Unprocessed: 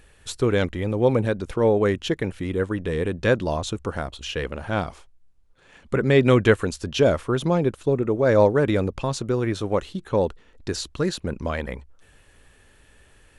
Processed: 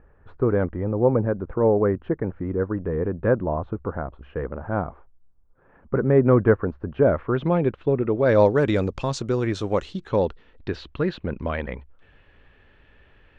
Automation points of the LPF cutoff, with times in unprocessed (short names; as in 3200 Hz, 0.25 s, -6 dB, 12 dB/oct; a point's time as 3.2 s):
LPF 24 dB/oct
6.93 s 1400 Hz
7.48 s 2900 Hz
8.01 s 2900 Hz
8.63 s 7300 Hz
9.79 s 7300 Hz
10.79 s 3200 Hz